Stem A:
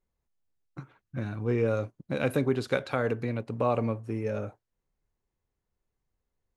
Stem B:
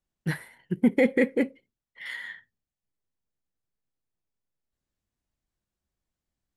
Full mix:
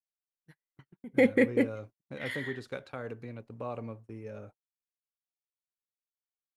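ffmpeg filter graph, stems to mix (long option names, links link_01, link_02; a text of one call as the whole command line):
ffmpeg -i stem1.wav -i stem2.wav -filter_complex "[0:a]volume=-11.5dB,asplit=2[link_01][link_02];[1:a]adelay=200,volume=-1.5dB[link_03];[link_02]apad=whole_len=298185[link_04];[link_03][link_04]sidechaingate=range=-23dB:threshold=-56dB:ratio=16:detection=peak[link_05];[link_01][link_05]amix=inputs=2:normalize=0,agate=range=-31dB:threshold=-49dB:ratio=16:detection=peak" out.wav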